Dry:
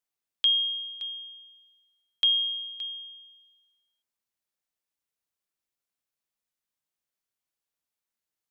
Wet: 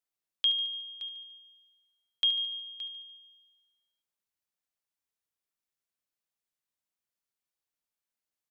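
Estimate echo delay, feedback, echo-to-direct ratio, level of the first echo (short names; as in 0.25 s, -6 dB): 73 ms, 56%, -11.5 dB, -13.0 dB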